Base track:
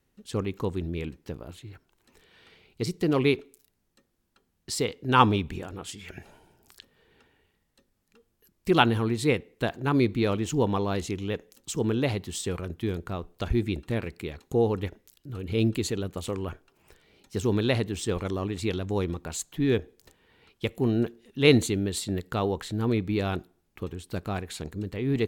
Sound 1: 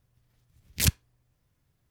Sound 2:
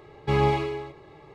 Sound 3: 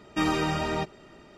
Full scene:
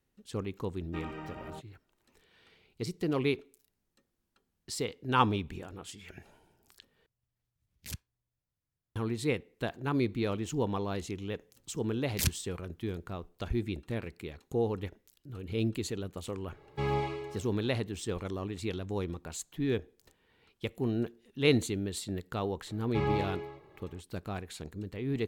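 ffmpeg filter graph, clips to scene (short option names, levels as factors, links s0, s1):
-filter_complex "[1:a]asplit=2[s0][s1];[2:a]asplit=2[s2][s3];[0:a]volume=0.473[s4];[3:a]afwtdn=0.0224[s5];[s3]highshelf=f=6300:g=-10.5[s6];[s4]asplit=2[s7][s8];[s7]atrim=end=7.064[s9];[s0]atrim=end=1.9,asetpts=PTS-STARTPTS,volume=0.126[s10];[s8]atrim=start=8.956[s11];[s5]atrim=end=1.37,asetpts=PTS-STARTPTS,volume=0.168,afade=t=in:d=0.004:c=hsin,afade=t=out:st=1.366:d=0.004:c=hsin,adelay=760[s12];[s1]atrim=end=1.9,asetpts=PTS-STARTPTS,volume=0.501,afade=t=in:d=0.004:c=hsin,afade=t=out:st=1.896:d=0.004:c=hsin,adelay=11390[s13];[s2]atrim=end=1.34,asetpts=PTS-STARTPTS,volume=0.355,afade=t=in:d=0.004:c=hsin,afade=t=out:st=1.336:d=0.004:c=hsin,adelay=16500[s14];[s6]atrim=end=1.34,asetpts=PTS-STARTPTS,volume=0.376,afade=t=in:d=0.004:c=hsin,afade=t=out:st=1.336:d=0.004:c=hsin,adelay=22670[s15];[s9][s10]acrossfade=d=0.004:c1=hsin:c2=hsin[s16];[s16][s11]acrossfade=d=0.004:c1=hsin:c2=hsin[s17];[s17][s12][s13][s14][s15]amix=inputs=5:normalize=0"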